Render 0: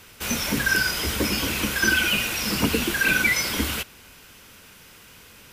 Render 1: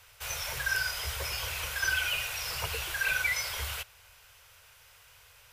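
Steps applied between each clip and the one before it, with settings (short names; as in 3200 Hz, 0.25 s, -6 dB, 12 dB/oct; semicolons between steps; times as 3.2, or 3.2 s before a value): Chebyshev band-stop 100–610 Hz, order 2; gain -7.5 dB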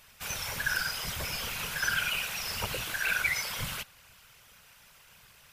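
whisperiser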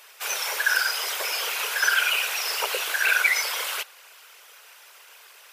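elliptic high-pass 400 Hz, stop band 70 dB; gain +8.5 dB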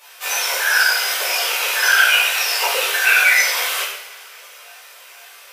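chorus voices 6, 0.47 Hz, delay 16 ms, depth 1.3 ms; crackle 24/s -56 dBFS; two-slope reverb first 0.72 s, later 2.7 s, from -20 dB, DRR -6.5 dB; gain +3.5 dB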